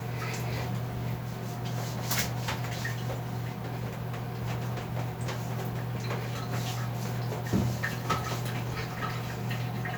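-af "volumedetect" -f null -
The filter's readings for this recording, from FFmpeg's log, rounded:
mean_volume: -32.5 dB
max_volume: -14.7 dB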